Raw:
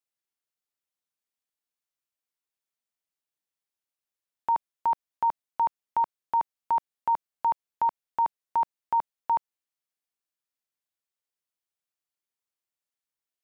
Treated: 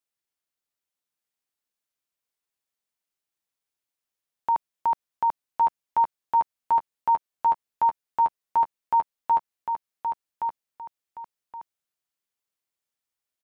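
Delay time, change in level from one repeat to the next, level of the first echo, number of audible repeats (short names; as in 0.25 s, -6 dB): 1.121 s, -10.5 dB, -6.0 dB, 2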